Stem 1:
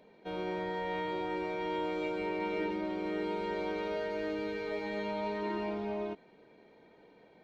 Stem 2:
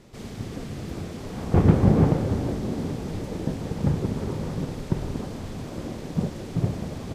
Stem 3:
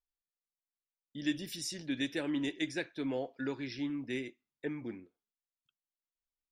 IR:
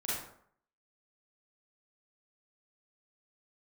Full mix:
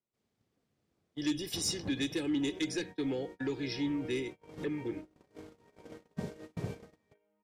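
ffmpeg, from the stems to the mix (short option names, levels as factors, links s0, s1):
-filter_complex "[0:a]afwtdn=0.00562,asplit=2[s0][s1];[s1]adelay=4.7,afreqshift=2.2[s2];[s0][s2]amix=inputs=2:normalize=1,adelay=2150,volume=0.355,asplit=2[s3][s4];[s4]volume=0.376[s5];[1:a]highpass=50,lowshelf=f=300:g=-7.5,volume=0.422[s6];[2:a]aecho=1:1:2.4:0.75,aeval=exprs='0.112*sin(PI/2*1.78*val(0)/0.112)':c=same,volume=0.631,asplit=2[s7][s8];[s8]apad=whole_len=315051[s9];[s6][s9]sidechaincompress=threshold=0.00398:ratio=4:attack=7.2:release=242[s10];[3:a]atrim=start_sample=2205[s11];[s5][s11]afir=irnorm=-1:irlink=0[s12];[s3][s10][s7][s12]amix=inputs=4:normalize=0,agate=range=0.0224:threshold=0.0126:ratio=16:detection=peak,acrossover=split=370|3000[s13][s14][s15];[s14]acompressor=threshold=0.00708:ratio=6[s16];[s13][s16][s15]amix=inputs=3:normalize=0"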